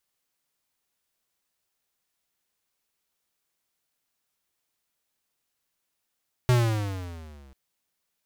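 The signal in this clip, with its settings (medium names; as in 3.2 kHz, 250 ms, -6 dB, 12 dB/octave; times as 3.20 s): gliding synth tone square, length 1.04 s, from 127 Hz, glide -11.5 st, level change -33.5 dB, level -18 dB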